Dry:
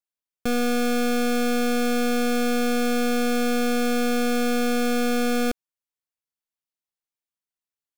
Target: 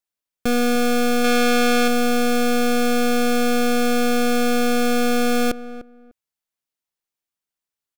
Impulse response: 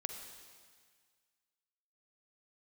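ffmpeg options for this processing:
-filter_complex "[0:a]asettb=1/sr,asplit=3[s0][s1][s2];[s0]atrim=end=1.244[s3];[s1]atrim=start=1.24:end=1.88,asetpts=PTS-STARTPTS,afade=t=in:d=0.004:c=qsin,afade=t=out:st=0.636:d=0.004:c=qsin,equalizer=f=2400:w=0.33:g=5.5[s4];[s2]atrim=start=1.876[s5];[s3][s4]acrossfade=d=0.004:c1=hsin:c2=qsin[s6];[s6][s5]acrossfade=d=0.004:c1=qsin:c2=hsin,asplit=2[s7][s8];[s8]adelay=299,lowpass=f=1300:p=1,volume=0.2,asplit=2[s9][s10];[s10]adelay=299,lowpass=f=1300:p=1,volume=0.2[s11];[s9][s11]amix=inputs=2:normalize=0[s12];[s7][s12]amix=inputs=2:normalize=0,volume=1.58"

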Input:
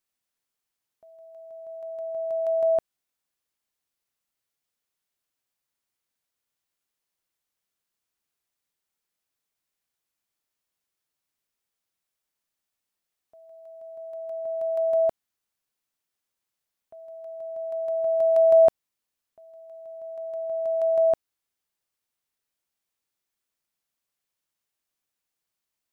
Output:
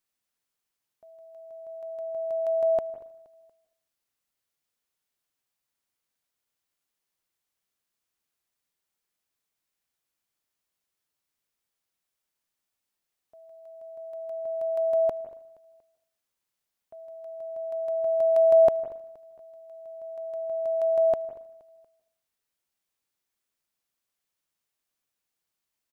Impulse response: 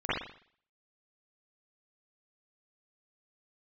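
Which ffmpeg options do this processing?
-filter_complex "[0:a]aecho=1:1:236|472|708:0.0708|0.0347|0.017,asplit=2[s0][s1];[1:a]atrim=start_sample=2205,adelay=111[s2];[s1][s2]afir=irnorm=-1:irlink=0,volume=0.0531[s3];[s0][s3]amix=inputs=2:normalize=0"

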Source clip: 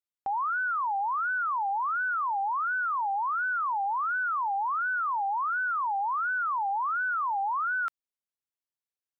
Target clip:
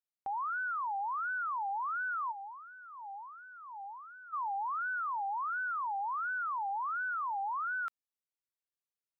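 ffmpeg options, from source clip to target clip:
-filter_complex "[0:a]asplit=3[s0][s1][s2];[s0]afade=t=out:st=2.31:d=0.02[s3];[s1]bandpass=f=460:t=q:w=2.2:csg=0,afade=t=in:st=2.31:d=0.02,afade=t=out:st=4.32:d=0.02[s4];[s2]afade=t=in:st=4.32:d=0.02[s5];[s3][s4][s5]amix=inputs=3:normalize=0,volume=0.473"

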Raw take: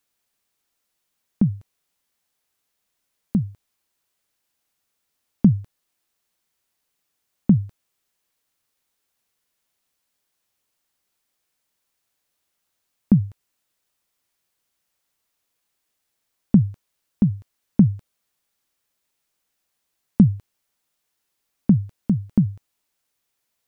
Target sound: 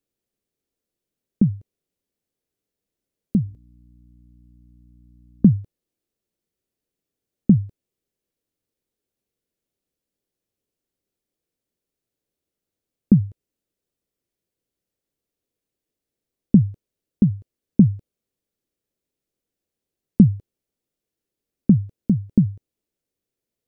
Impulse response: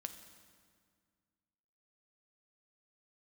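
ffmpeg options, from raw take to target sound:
-filter_complex "[0:a]asettb=1/sr,asplit=3[s0][s1][s2];[s0]atrim=end=3.444[s3];[s1]atrim=start=3.44:end=5.57,asetpts=PTS-STARTPTS,afade=t=in:d=0.004:c=qsin,afade=t=out:st=2.126:d=0.004:c=qsin,aeval=exprs='val(0)+0.00282*(sin(2*PI*60*n/s)+sin(2*PI*2*60*n/s)/2+sin(2*PI*3*60*n/s)/3+sin(2*PI*4*60*n/s)/4+sin(2*PI*5*60*n/s)/5)':c=same[s4];[s2]atrim=start=5.566[s5];[s3][s4]acrossfade=d=0.004:c1=hsin:c2=qsin[s6];[s6][s5]acrossfade=d=0.004:c1=qsin:c2=hsin,lowshelf=f=640:t=q:w=1.5:g=12,volume=0.266"

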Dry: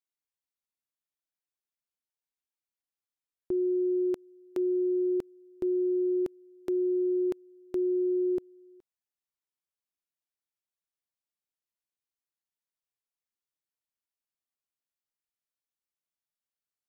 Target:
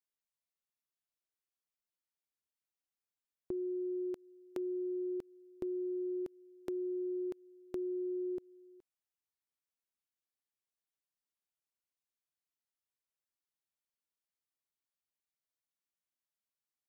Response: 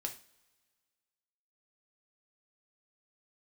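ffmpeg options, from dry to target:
-af "acompressor=threshold=0.0251:ratio=6,volume=0.631"

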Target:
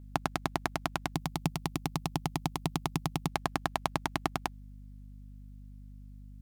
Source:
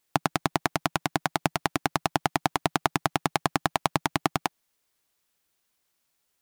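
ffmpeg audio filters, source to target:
-filter_complex "[0:a]asettb=1/sr,asplit=3[s0][s1][s2];[s0]atrim=end=1.134[s3];[s1]atrim=start=1.13:end=3.28,asetpts=PTS-STARTPTS,afade=t=in:d=0.004:c=qsin,afade=t=out:st=2.146:d=0.004:c=qsin,equalizer=f=160:t=o:w=0.67:g=8,equalizer=f=630:t=o:w=0.67:g=-7,equalizer=f=1600:t=o:w=0.67:g=-11,equalizer=f=16000:t=o:w=0.67:g=5[s4];[s2]atrim=start=3.276[s5];[s3][s4]acrossfade=d=0.004:c1=hsin:c2=qsin[s6];[s6][s5]acrossfade=d=0.004:c1=qsin:c2=hsin,aeval=exprs='val(0)+0.00891*(sin(2*PI*50*n/s)+sin(2*PI*2*50*n/s)/2+sin(2*PI*3*50*n/s)/3+sin(2*PI*4*50*n/s)/4+sin(2*PI*5*50*n/s)/5)':c=same,volume=0.501"

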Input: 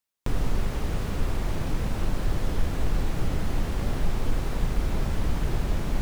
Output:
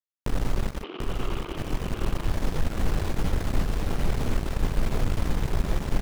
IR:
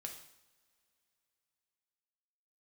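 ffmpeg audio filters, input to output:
-filter_complex "[0:a]acontrast=51,aeval=exprs='0.473*(cos(1*acos(clip(val(0)/0.473,-1,1)))-cos(1*PI/2))+0.0596*(cos(7*acos(clip(val(0)/0.473,-1,1)))-cos(7*PI/2))':c=same,asplit=3[s0][s1][s2];[s0]afade=t=out:st=0.82:d=0.02[s3];[s1]highpass=f=290:w=0.5412,highpass=f=290:w=1.3066,equalizer=f=360:t=q:w=4:g=7,equalizer=f=570:t=q:w=4:g=-8,equalizer=f=820:t=q:w=4:g=-4,equalizer=f=1200:t=q:w=4:g=5,equalizer=f=1800:t=q:w=4:g=-9,equalizer=f=3000:t=q:w=4:g=9,lowpass=f=3300:w=0.5412,lowpass=f=3300:w=1.3066,afade=t=in:st=0.82:d=0.02,afade=t=out:st=1.56:d=0.02[s4];[s2]afade=t=in:st=1.56:d=0.02[s5];[s3][s4][s5]amix=inputs=3:normalize=0,asplit=2[s6][s7];[s7]aecho=0:1:740:0.668[s8];[s6][s8]amix=inputs=2:normalize=0,volume=0.447"

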